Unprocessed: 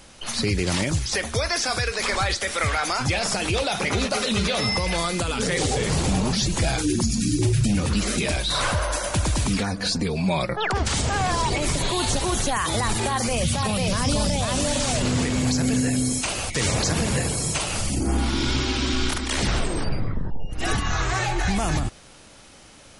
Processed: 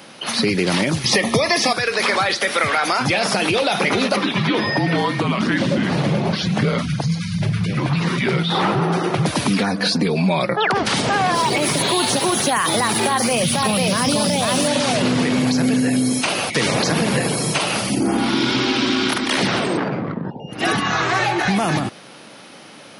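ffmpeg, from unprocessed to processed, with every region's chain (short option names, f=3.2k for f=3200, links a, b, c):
-filter_complex "[0:a]asettb=1/sr,asplit=3[a][b][c];[a]atrim=end=1.044[d];[b]atrim=start=1.04:end=1.73,asetpts=PTS-STARTPTS,afade=t=in:d=0.004:c=qsin,afade=t=out:st=0.686:d=0.004:c=qsin,equalizer=f=160:w=1.1:g=8,acontrast=67,asuperstop=centerf=1500:order=12:qfactor=4.1[e];[c]atrim=start=1.726[f];[d][e]acrossfade=d=0.004:c1=hsin:c2=qsin[g];[g][f]acrossfade=d=0.004:c1=qsin:c2=hsin,asettb=1/sr,asplit=3[h][i][j];[h]atrim=end=4.164[k];[i]atrim=start=4.16:end=9.26,asetpts=PTS-STARTPTS,afade=t=in:d=0.004:c=qsin,afade=t=out:st=5.096:d=0.004:c=qsin,aemphasis=mode=reproduction:type=75fm,afreqshift=-220[l];[j]atrim=start=9.256[m];[k][l]acrossfade=d=0.004:c1=hsin:c2=qsin[n];[n][m]acrossfade=d=0.004:c1=qsin:c2=hsin,asettb=1/sr,asplit=3[o][p][q];[o]atrim=end=11.354[r];[p]atrim=start=11.35:end=14.68,asetpts=PTS-STARTPTS,afade=t=in:d=0.004:c=qsin,afade=t=out:st=3.326:d=0.004:c=qsin,highshelf=f=7.4k:g=10,aeval=exprs='sgn(val(0))*max(abs(val(0))-0.00596,0)':c=same[s];[q]atrim=start=14.676[t];[r][s]acrossfade=d=0.004:c1=hsin:c2=qsin[u];[u][t]acrossfade=d=0.004:c1=qsin:c2=hsin,asettb=1/sr,asplit=3[v][w][x];[v]atrim=end=19.774[y];[w]atrim=start=19.77:end=20.25,asetpts=PTS-STARTPTS,afade=t=in:d=0.004:c=qsin,afade=t=out:st=0.476:d=0.004:c=qsin,equalizer=f=2k:t=o:w=2.5:g=3.5,adynamicsmooth=sensitivity=3:basefreq=830,highpass=120,lowpass=6.6k[z];[x]atrim=start=20.246[aa];[y][z]acrossfade=d=0.004:c1=hsin:c2=qsin[ab];[ab][aa]acrossfade=d=0.004:c1=qsin:c2=hsin,highpass=f=150:w=0.5412,highpass=f=150:w=1.3066,equalizer=f=7.5k:t=o:w=0.66:g=-13,acompressor=threshold=-23dB:ratio=6,volume=9dB"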